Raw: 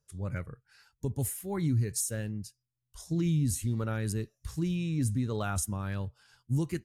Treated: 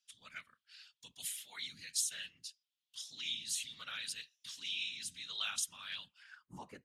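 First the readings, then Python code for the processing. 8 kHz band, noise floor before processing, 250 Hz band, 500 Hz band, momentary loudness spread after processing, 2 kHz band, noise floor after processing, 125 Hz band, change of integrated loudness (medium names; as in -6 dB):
-3.0 dB, -84 dBFS, -30.5 dB, -26.0 dB, 19 LU, 0.0 dB, under -85 dBFS, -36.0 dB, -8.0 dB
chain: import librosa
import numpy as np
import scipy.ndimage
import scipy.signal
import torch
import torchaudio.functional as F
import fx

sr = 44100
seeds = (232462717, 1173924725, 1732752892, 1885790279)

y = fx.tone_stack(x, sr, knobs='10-0-10')
y = fx.whisperise(y, sr, seeds[0])
y = fx.filter_sweep_bandpass(y, sr, from_hz=3300.0, to_hz=500.0, start_s=6.05, end_s=6.8, q=3.6)
y = y * 10.0 ** (16.0 / 20.0)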